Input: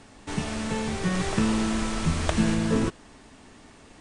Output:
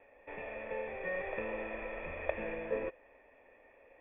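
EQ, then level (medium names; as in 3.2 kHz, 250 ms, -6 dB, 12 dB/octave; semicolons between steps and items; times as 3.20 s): cascade formant filter e; rippled Chebyshev low-pass 3.5 kHz, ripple 9 dB; peaking EQ 160 Hz -13.5 dB 1.7 oct; +11.5 dB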